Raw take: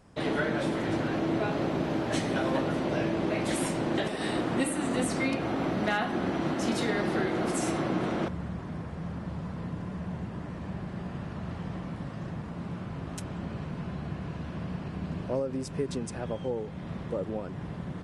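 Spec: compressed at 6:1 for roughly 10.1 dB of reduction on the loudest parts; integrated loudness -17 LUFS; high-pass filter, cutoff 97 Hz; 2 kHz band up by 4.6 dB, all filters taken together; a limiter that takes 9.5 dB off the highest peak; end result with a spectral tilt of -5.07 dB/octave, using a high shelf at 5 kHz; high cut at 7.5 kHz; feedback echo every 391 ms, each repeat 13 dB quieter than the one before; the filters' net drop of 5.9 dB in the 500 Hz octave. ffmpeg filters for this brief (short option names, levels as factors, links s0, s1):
-af "highpass=97,lowpass=7500,equalizer=f=500:t=o:g=-8.5,equalizer=f=2000:t=o:g=5,highshelf=f=5000:g=9,acompressor=threshold=0.02:ratio=6,alimiter=level_in=2:limit=0.0631:level=0:latency=1,volume=0.501,aecho=1:1:391|782|1173:0.224|0.0493|0.0108,volume=13.3"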